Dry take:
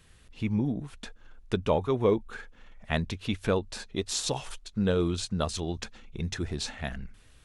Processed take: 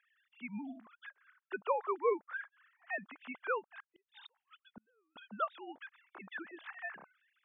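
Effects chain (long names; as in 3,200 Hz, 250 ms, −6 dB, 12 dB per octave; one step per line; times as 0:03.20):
three sine waves on the formant tracks
resonant band-pass 1,400 Hz, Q 1.4
0:03.65–0:05.16: gate with flip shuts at −42 dBFS, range −40 dB
level +1 dB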